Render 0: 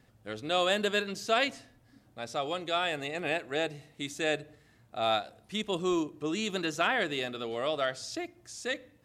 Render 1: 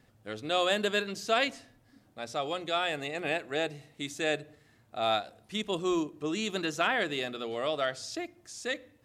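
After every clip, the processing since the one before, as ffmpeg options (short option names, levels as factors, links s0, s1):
-af "bandreject=f=60:t=h:w=6,bandreject=f=120:t=h:w=6,bandreject=f=180:t=h:w=6"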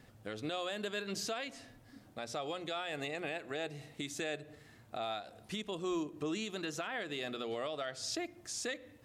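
-af "acompressor=threshold=0.0112:ratio=2,alimiter=level_in=2.66:limit=0.0631:level=0:latency=1:release=198,volume=0.376,volume=1.58"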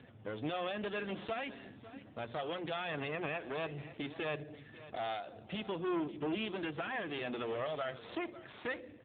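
-af "aeval=exprs='clip(val(0),-1,0.00501)':c=same,aecho=1:1:548:0.168,volume=1.88" -ar 8000 -c:a libopencore_amrnb -b:a 7400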